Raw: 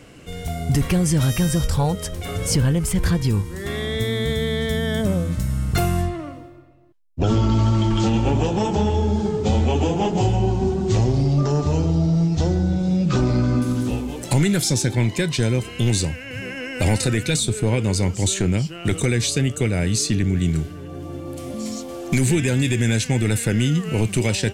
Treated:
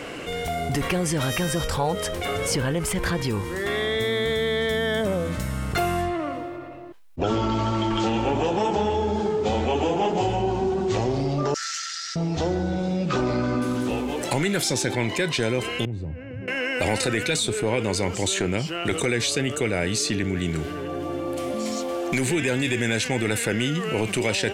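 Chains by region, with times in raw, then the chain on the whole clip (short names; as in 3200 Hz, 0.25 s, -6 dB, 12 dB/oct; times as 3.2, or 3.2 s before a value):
11.54–12.16 minimum comb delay 1.4 ms + rippled Chebyshev high-pass 1300 Hz, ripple 9 dB + bell 7500 Hz +13.5 dB 1.7 oct
15.85–16.48 compressor 3:1, threshold -21 dBFS + band-pass 100 Hz, Q 1.2
whole clip: tone controls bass -14 dB, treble -8 dB; fast leveller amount 50%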